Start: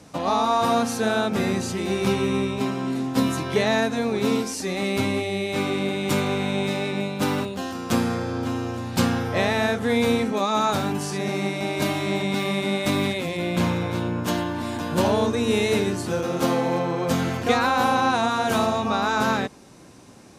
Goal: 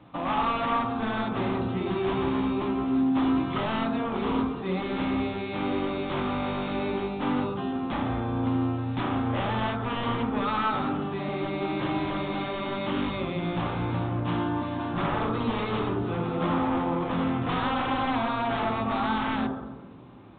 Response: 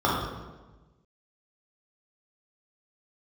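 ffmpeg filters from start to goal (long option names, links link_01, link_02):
-filter_complex "[0:a]aeval=exprs='0.1*(abs(mod(val(0)/0.1+3,4)-2)-1)':channel_layout=same,asplit=2[link_01][link_02];[1:a]atrim=start_sample=2205,lowpass=2500[link_03];[link_02][link_03]afir=irnorm=-1:irlink=0,volume=-18.5dB[link_04];[link_01][link_04]amix=inputs=2:normalize=0,volume=-5.5dB" -ar 8000 -c:a pcm_alaw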